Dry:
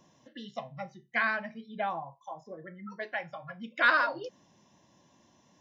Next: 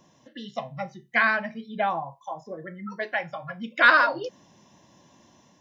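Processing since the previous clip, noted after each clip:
automatic gain control gain up to 3.5 dB
level +3.5 dB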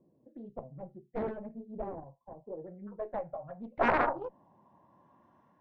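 harmonic generator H 3 −16 dB, 6 −17 dB, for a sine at −4.5 dBFS
low-pass filter sweep 420 Hz → 1,300 Hz, 0:02.25–0:05.41
highs frequency-modulated by the lows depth 0.7 ms
level −3.5 dB

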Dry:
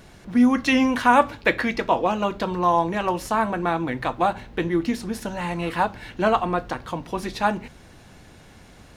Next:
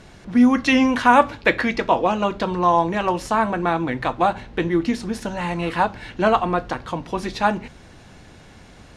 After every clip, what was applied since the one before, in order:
low-pass filter 8,600 Hz 12 dB per octave
level +2.5 dB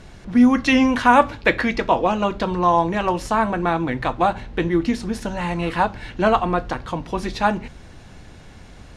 low-shelf EQ 74 Hz +9 dB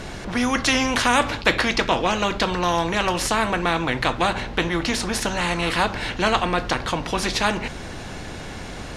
every bin compressed towards the loudest bin 2 to 1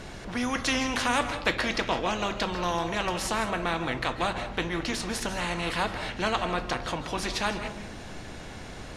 convolution reverb RT60 0.65 s, pre-delay 115 ms, DRR 10 dB
level −7.5 dB

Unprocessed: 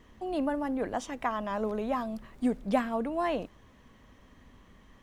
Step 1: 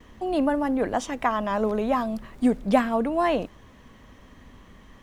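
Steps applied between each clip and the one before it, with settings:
noise gate with hold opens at −51 dBFS
level +7 dB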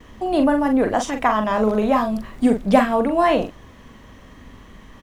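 double-tracking delay 42 ms −6.5 dB
level +5 dB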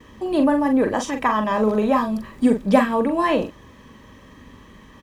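notch comb filter 710 Hz

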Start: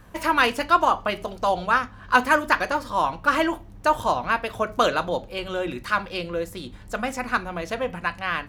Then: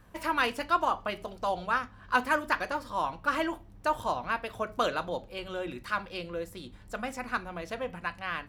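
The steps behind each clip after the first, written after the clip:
notch filter 6,500 Hz, Q 18
level −8 dB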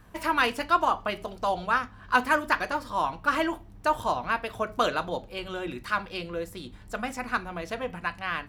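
notch filter 540 Hz, Q 14
level +3.5 dB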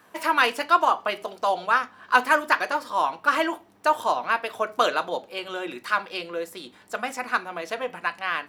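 high-pass filter 360 Hz 12 dB per octave
level +4 dB

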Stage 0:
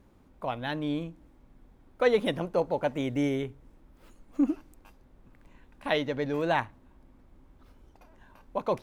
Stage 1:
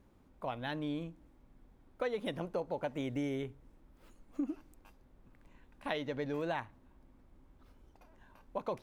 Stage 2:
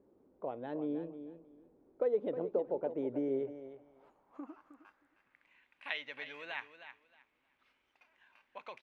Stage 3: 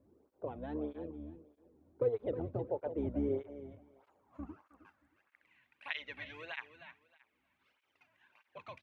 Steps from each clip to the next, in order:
downward compressor 6 to 1, threshold −27 dBFS, peak gain reduction 9.5 dB; level −5 dB
repeating echo 313 ms, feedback 20%, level −11 dB; band-pass filter sweep 420 Hz → 2,400 Hz, 0:03.26–0:05.57; level +6.5 dB
sub-octave generator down 2 octaves, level +3 dB; through-zero flanger with one copy inverted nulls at 1.6 Hz, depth 2.6 ms; level +1 dB

